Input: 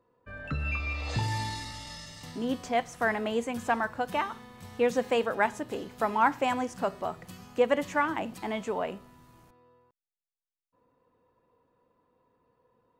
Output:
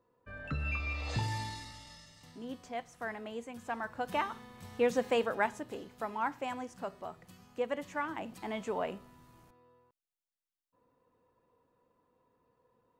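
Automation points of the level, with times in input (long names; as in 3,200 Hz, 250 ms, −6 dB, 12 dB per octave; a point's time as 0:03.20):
0:01.16 −3.5 dB
0:02.13 −12 dB
0:03.63 −12 dB
0:04.15 −3 dB
0:05.22 −3 dB
0:06.08 −10 dB
0:07.86 −10 dB
0:08.81 −3 dB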